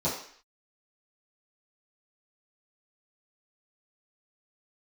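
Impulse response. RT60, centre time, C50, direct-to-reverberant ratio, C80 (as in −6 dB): 0.55 s, 37 ms, 5.0 dB, −11.0 dB, 8.5 dB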